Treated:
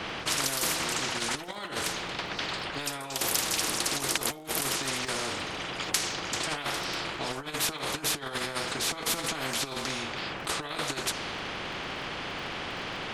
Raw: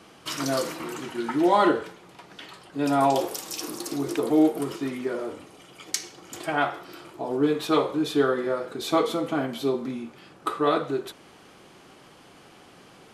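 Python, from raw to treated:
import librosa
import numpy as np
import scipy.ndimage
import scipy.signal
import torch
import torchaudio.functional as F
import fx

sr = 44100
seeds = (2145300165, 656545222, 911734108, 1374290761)

y = fx.env_lowpass(x, sr, base_hz=2600.0, full_db=-21.0)
y = fx.over_compress(y, sr, threshold_db=-29.0, ratio=-0.5)
y = fx.dmg_crackle(y, sr, seeds[0], per_s=18.0, level_db=-58.0)
y = fx.spectral_comp(y, sr, ratio=4.0)
y = y * librosa.db_to_amplitude(2.5)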